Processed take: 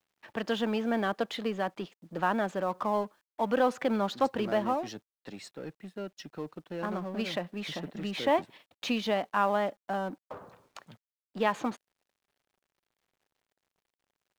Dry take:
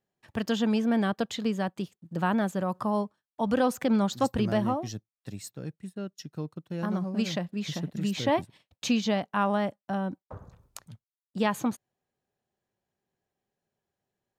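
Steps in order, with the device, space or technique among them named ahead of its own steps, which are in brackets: phone line with mismatched companding (band-pass 330–3300 Hz; companding laws mixed up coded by mu)

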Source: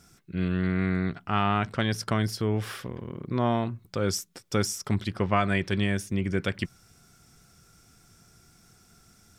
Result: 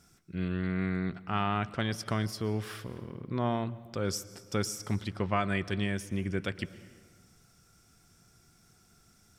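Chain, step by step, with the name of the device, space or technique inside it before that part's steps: compressed reverb return (on a send at -13 dB: reverberation RT60 1.3 s, pre-delay 109 ms + compression, threshold -27 dBFS, peak gain reduction 8.5 dB); on the sum: trim -5 dB

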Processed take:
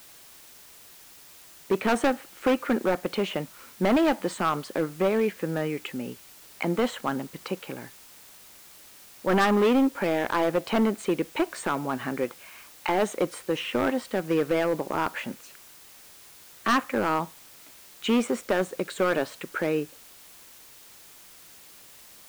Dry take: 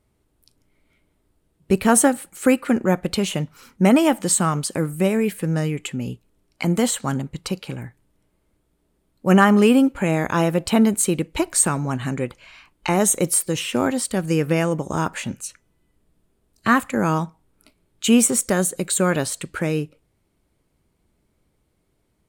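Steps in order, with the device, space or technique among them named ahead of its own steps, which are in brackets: aircraft radio (band-pass 310–2400 Hz; hard clipper -17.5 dBFS, distortion -9 dB; white noise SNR 22 dB)

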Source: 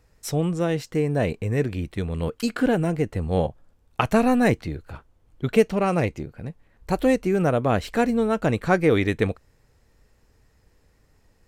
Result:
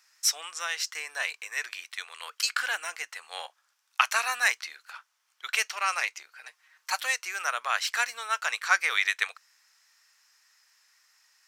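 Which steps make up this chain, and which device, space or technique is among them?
headphones lying on a table (high-pass 1.2 kHz 24 dB/octave; peaking EQ 5.6 kHz +8 dB 0.6 oct); 6.35–7.01 s: comb 6.5 ms, depth 90%; trim +4.5 dB

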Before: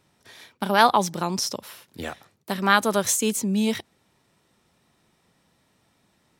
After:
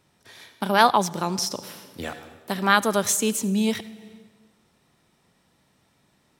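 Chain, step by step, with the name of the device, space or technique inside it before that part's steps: compressed reverb return (on a send at -8 dB: reverberation RT60 1.1 s, pre-delay 62 ms + compression 6:1, threshold -30 dBFS, peak gain reduction 16 dB)

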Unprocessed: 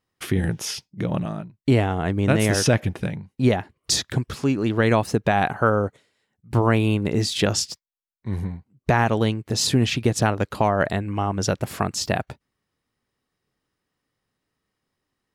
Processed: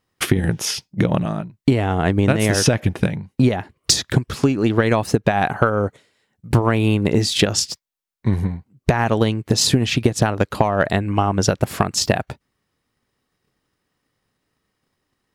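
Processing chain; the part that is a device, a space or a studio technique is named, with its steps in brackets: drum-bus smash (transient shaper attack +8 dB, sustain 0 dB; compression 6:1, threshold -17 dBFS, peak gain reduction 10.5 dB; saturation -6 dBFS, distortion -24 dB); trim +5.5 dB

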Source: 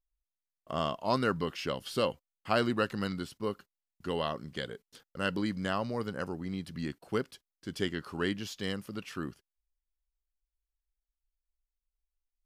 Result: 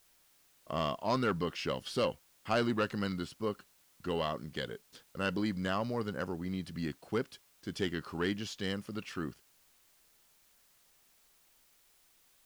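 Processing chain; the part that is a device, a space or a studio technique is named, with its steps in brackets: compact cassette (saturation -21.5 dBFS, distortion -17 dB; low-pass 8.9 kHz; wow and flutter 23 cents; white noise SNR 30 dB)

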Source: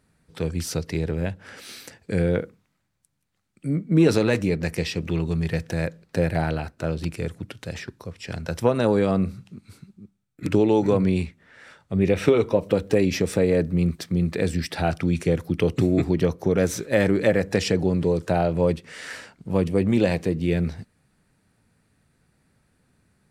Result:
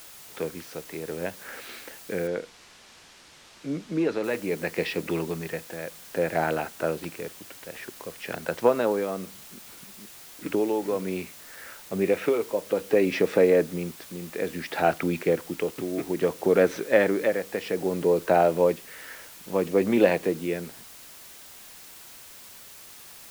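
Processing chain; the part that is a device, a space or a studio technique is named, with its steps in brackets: shortwave radio (band-pass 330–2600 Hz; tremolo 0.6 Hz, depth 67%; white noise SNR 19 dB); 2.27–4.24 s: low-pass 5.6 kHz 12 dB/octave; trim +4 dB

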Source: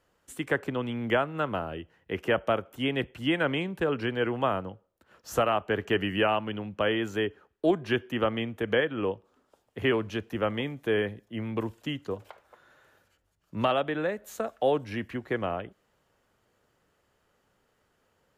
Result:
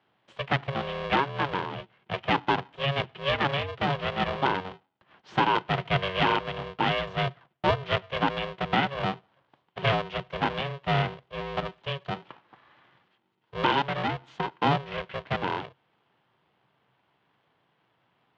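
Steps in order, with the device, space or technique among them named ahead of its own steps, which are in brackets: ring modulator pedal into a guitar cabinet (polarity switched at an audio rate 280 Hz; cabinet simulation 110–3800 Hz, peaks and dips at 130 Hz +9 dB, 230 Hz -3 dB, 970 Hz +4 dB, 3.1 kHz +5 dB)

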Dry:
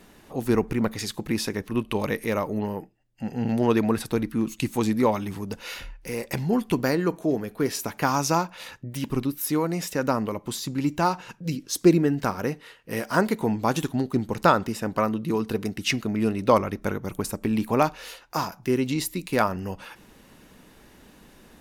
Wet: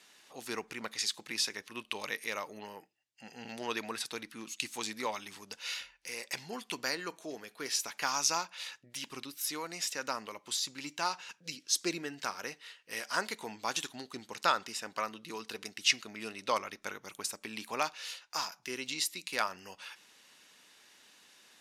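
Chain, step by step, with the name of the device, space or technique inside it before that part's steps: piezo pickup straight into a mixer (low-pass 5.2 kHz 12 dB/octave; differentiator); trim +7 dB

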